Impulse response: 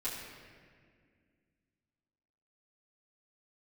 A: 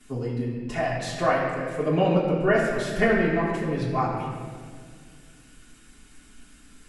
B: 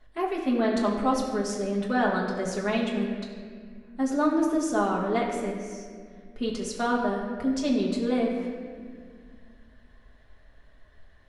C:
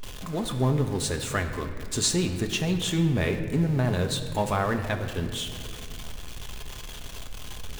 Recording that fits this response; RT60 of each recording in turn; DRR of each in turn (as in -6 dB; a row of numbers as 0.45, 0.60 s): A; 2.0, 2.0, 2.0 s; -11.0, -3.5, 4.5 dB